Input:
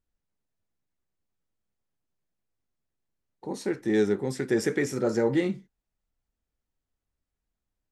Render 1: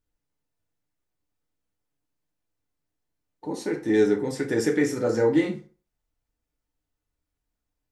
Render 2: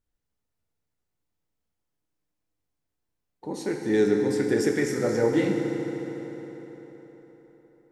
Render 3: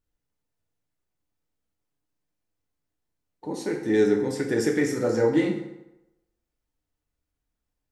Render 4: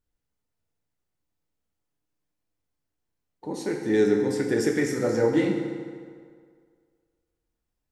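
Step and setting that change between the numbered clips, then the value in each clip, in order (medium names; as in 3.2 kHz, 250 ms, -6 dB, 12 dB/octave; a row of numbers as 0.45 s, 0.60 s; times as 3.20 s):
FDN reverb, RT60: 0.39 s, 4.5 s, 0.94 s, 2 s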